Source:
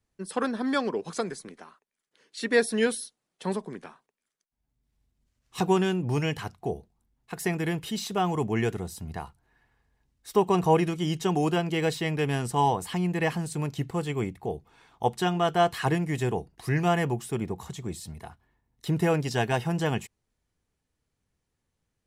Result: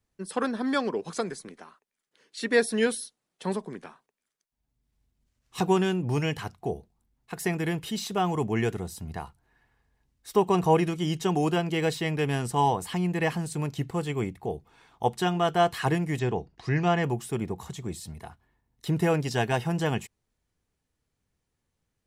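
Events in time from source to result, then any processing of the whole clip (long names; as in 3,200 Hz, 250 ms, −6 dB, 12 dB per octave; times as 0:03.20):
0:16.19–0:17.04: low-pass filter 6,200 Hz 24 dB per octave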